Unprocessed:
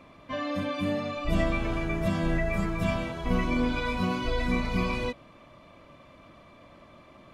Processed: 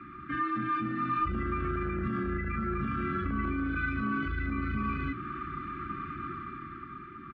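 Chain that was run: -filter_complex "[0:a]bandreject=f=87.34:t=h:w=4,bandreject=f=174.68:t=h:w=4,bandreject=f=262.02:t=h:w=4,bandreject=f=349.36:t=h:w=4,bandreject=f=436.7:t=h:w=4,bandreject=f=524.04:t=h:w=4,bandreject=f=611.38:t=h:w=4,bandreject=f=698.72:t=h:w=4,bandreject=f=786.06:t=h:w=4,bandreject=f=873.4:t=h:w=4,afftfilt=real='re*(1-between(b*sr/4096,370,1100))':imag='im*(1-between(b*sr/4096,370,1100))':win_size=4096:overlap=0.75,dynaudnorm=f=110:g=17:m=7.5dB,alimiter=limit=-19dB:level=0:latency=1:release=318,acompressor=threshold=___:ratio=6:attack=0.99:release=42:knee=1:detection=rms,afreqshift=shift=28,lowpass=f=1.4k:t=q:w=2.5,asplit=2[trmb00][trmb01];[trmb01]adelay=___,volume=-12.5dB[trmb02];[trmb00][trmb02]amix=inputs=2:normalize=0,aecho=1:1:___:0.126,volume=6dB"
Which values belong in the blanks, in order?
-36dB, 14, 1128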